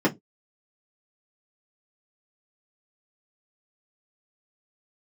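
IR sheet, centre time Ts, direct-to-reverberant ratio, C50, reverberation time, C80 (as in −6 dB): 16 ms, −4.5 dB, 23.0 dB, non-exponential decay, 31.5 dB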